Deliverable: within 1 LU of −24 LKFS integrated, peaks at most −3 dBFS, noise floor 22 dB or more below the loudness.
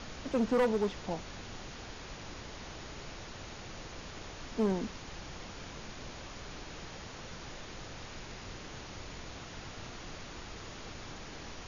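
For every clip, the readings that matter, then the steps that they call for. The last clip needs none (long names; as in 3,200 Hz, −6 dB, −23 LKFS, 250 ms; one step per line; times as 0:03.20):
share of clipped samples 0.6%; peaks flattened at −23.5 dBFS; background noise floor −47 dBFS; target noise floor −62 dBFS; integrated loudness −39.5 LKFS; sample peak −23.5 dBFS; target loudness −24.0 LKFS
→ clipped peaks rebuilt −23.5 dBFS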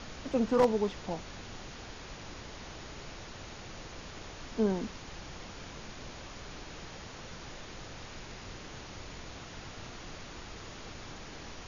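share of clipped samples 0.0%; background noise floor −47 dBFS; target noise floor −60 dBFS
→ noise reduction from a noise print 13 dB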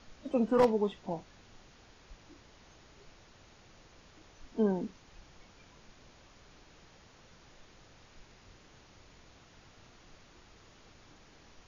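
background noise floor −60 dBFS; integrated loudness −31.5 LKFS; sample peak −14.5 dBFS; target loudness −24.0 LKFS
→ level +7.5 dB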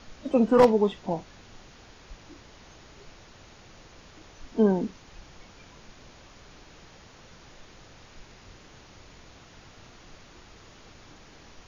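integrated loudness −24.0 LKFS; sample peak −7.0 dBFS; background noise floor −52 dBFS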